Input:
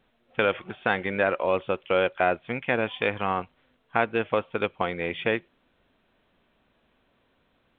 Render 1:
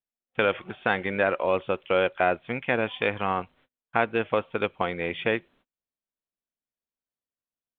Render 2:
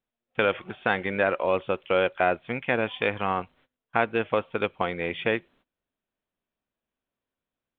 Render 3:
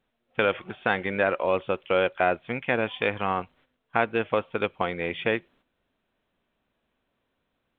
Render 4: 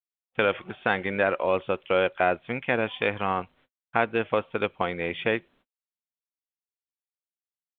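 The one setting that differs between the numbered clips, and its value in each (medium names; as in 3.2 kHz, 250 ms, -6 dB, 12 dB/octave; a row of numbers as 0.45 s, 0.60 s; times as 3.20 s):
gate, range: -35 dB, -22 dB, -9 dB, -60 dB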